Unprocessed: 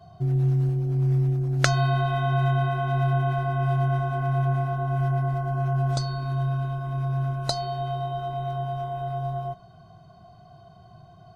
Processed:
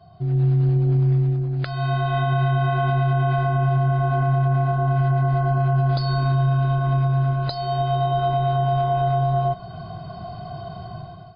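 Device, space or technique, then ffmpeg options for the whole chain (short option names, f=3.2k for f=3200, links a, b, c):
low-bitrate web radio: -filter_complex "[0:a]asettb=1/sr,asplit=3[a][b][c];[a]atrim=end=3.494[d];[b]atrim=start=3.49:end=4.91,asetpts=PTS-STARTPTS,afade=t=in:d=0.004:c=qsin,afade=t=out:st=1.416:d=0.004:c=qsin,equalizer=f=4.9k:w=0.36:g=-4[e];[c]atrim=start=4.906[f];[d][e]acrossfade=d=0.004:c1=hsin:c2=qsin[g];[g][f]acrossfade=d=0.004:c1=qsin:c2=hsin,dynaudnorm=f=250:g=5:m=16.5dB,alimiter=limit=-12.5dB:level=0:latency=1:release=266" -ar 11025 -c:a libmp3lame -b:a 32k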